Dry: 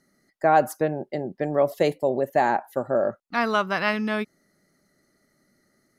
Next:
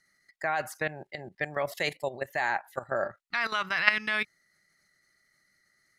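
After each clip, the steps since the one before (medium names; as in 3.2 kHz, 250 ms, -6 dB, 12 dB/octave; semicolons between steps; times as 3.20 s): graphic EQ 250/500/2000/4000/8000 Hz -11/-6/+11/+6/+5 dB; level held to a coarse grid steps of 14 dB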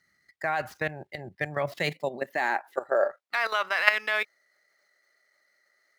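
median filter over 5 samples; high-pass sweep 75 Hz -> 530 Hz, 1.16–3.13 s; trim +1 dB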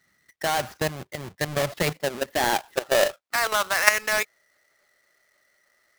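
square wave that keeps the level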